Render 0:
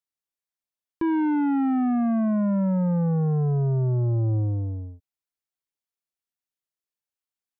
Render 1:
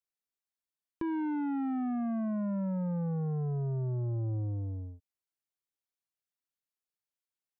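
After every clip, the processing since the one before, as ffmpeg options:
ffmpeg -i in.wav -af "acompressor=threshold=-31dB:ratio=2,volume=-5dB" out.wav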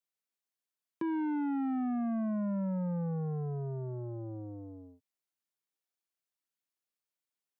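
ffmpeg -i in.wav -af "highpass=frequency=150:width=0.5412,highpass=frequency=150:width=1.3066" out.wav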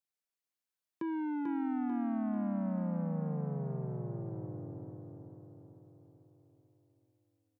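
ffmpeg -i in.wav -af "aecho=1:1:442|884|1326|1768|2210|2652|3094:0.596|0.322|0.174|0.0938|0.0506|0.0274|0.0148,volume=-3dB" out.wav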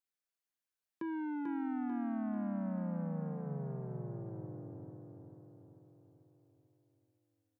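ffmpeg -i in.wav -af "equalizer=frequency=1600:width=4.1:gain=4,bandreject=frequency=50:width_type=h:width=6,bandreject=frequency=100:width_type=h:width=6,bandreject=frequency=150:width_type=h:width=6,volume=-3dB" out.wav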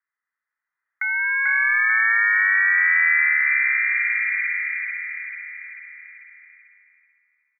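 ffmpeg -i in.wav -af "firequalizer=gain_entry='entry(130,0);entry(190,-12);entry(490,14);entry(1200,10);entry(1800,-10)':delay=0.05:min_phase=1,lowpass=frequency=2100:width_type=q:width=0.5098,lowpass=frequency=2100:width_type=q:width=0.6013,lowpass=frequency=2100:width_type=q:width=0.9,lowpass=frequency=2100:width_type=q:width=2.563,afreqshift=-2500,dynaudnorm=framelen=250:gausssize=9:maxgain=11dB,volume=6dB" out.wav

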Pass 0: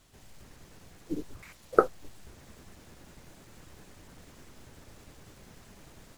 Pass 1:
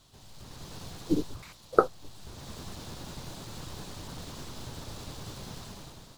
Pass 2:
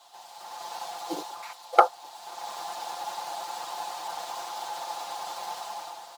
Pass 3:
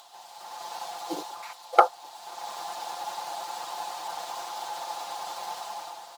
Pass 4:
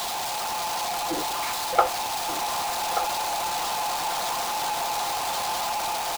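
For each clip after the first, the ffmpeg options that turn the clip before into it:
ffmpeg -i in.wav -af "equalizer=frequency=125:width_type=o:width=1:gain=5,equalizer=frequency=1000:width_type=o:width=1:gain=5,equalizer=frequency=2000:width_type=o:width=1:gain=-6,equalizer=frequency=4000:width_type=o:width=1:gain=9,dynaudnorm=framelen=120:gausssize=9:maxgain=9.5dB,volume=-1dB" out.wav
ffmpeg -i in.wav -af "aecho=1:1:5.8:0.81,asoftclip=type=hard:threshold=-10.5dB,highpass=frequency=800:width_type=q:width=7.8,volume=2.5dB" out.wav
ffmpeg -i in.wav -af "acompressor=mode=upward:threshold=-48dB:ratio=2.5" out.wav
ffmpeg -i in.wav -af "aeval=exprs='val(0)+0.5*0.1*sgn(val(0))':channel_layout=same,aecho=1:1:1182:0.335,volume=-4dB" out.wav

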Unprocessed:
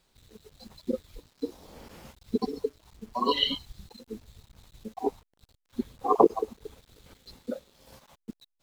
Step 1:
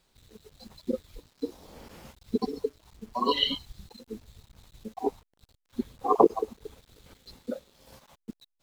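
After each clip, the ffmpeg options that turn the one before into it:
ffmpeg -i in.wav -af anull out.wav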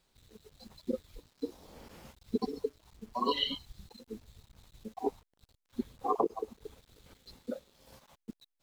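ffmpeg -i in.wav -af "alimiter=limit=-13.5dB:level=0:latency=1:release=388,volume=-4dB" out.wav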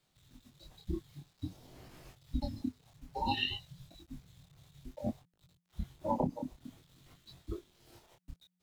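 ffmpeg -i in.wav -af "flanger=delay=20:depth=7.8:speed=0.55,afreqshift=-180,volume=1dB" out.wav

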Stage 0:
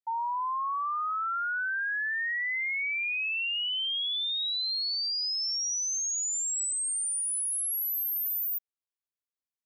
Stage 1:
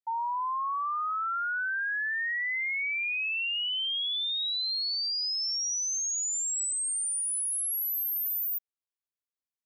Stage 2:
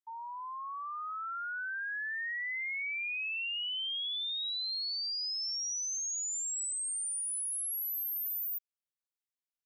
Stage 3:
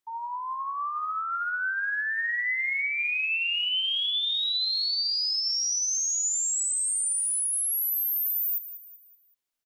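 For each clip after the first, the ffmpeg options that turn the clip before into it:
ffmpeg -i in.wav -af anull out.wav
ffmpeg -i in.wav -af "highpass=1300,volume=-5dB" out.wav
ffmpeg -i in.wav -af "aphaser=in_gain=1:out_gain=1:delay=3.3:decay=0.2:speed=1.2:type=sinusoidal,aecho=1:1:190|380|570|760:0.224|0.0918|0.0376|0.0154,volume=8dB" out.wav

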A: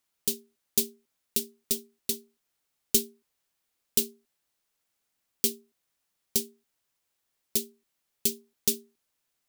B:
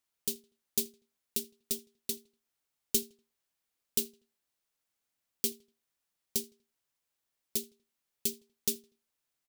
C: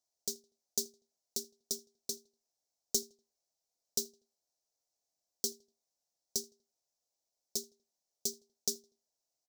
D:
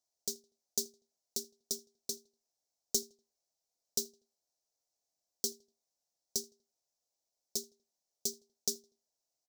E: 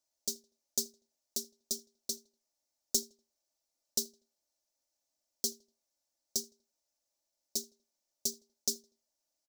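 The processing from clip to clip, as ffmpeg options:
ffmpeg -i in.wav -filter_complex "[0:a]asplit=2[link_01][link_02];[link_02]adelay=81,lowpass=frequency=4300:poles=1,volume=-23dB,asplit=2[link_03][link_04];[link_04]adelay=81,lowpass=frequency=4300:poles=1,volume=0.39,asplit=2[link_05][link_06];[link_06]adelay=81,lowpass=frequency=4300:poles=1,volume=0.39[link_07];[link_01][link_03][link_05][link_07]amix=inputs=4:normalize=0,volume=-5.5dB" out.wav
ffmpeg -i in.wav -af "firequalizer=gain_entry='entry(220,0);entry(680,13);entry(1700,-29);entry(4000,5);entry(5700,13);entry(9800,0)':delay=0.05:min_phase=1,volume=-8dB" out.wav
ffmpeg -i in.wav -af anull out.wav
ffmpeg -i in.wav -af "aecho=1:1:3.4:0.71" out.wav

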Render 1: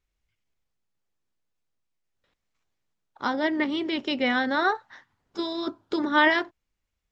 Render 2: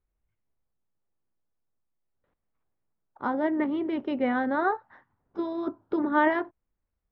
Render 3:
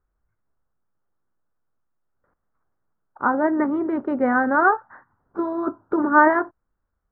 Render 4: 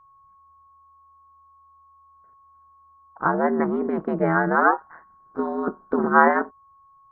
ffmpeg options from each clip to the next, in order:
ffmpeg -i in.wav -af "lowpass=1200" out.wav
ffmpeg -i in.wav -af "highshelf=frequency=2100:width_type=q:width=3:gain=-13.5,volume=5dB" out.wav
ffmpeg -i in.wav -af "aeval=exprs='val(0)*sin(2*PI*79*n/s)':channel_layout=same,aeval=exprs='val(0)+0.002*sin(2*PI*1100*n/s)':channel_layout=same,volume=2dB" out.wav

